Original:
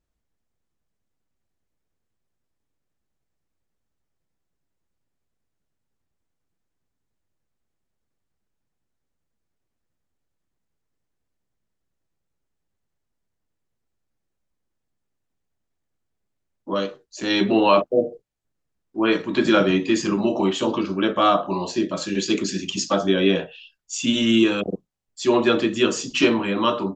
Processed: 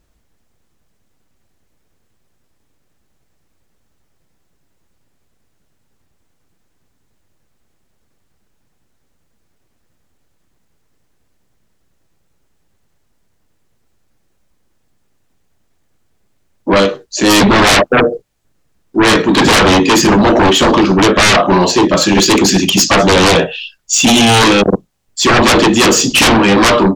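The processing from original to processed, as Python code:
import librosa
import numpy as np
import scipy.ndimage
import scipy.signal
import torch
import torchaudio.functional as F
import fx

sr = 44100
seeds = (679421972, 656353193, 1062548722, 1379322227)

y = fx.fold_sine(x, sr, drive_db=15, ceiling_db=-5.0)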